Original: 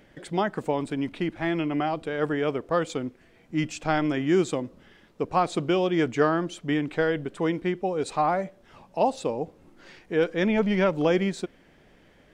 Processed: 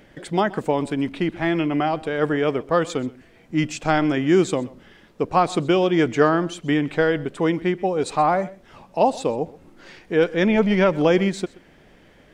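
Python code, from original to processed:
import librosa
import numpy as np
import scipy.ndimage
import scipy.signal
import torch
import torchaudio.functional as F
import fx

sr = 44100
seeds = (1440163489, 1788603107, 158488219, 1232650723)

y = x + 10.0 ** (-21.0 / 20.0) * np.pad(x, (int(128 * sr / 1000.0), 0))[:len(x)]
y = y * librosa.db_to_amplitude(5.0)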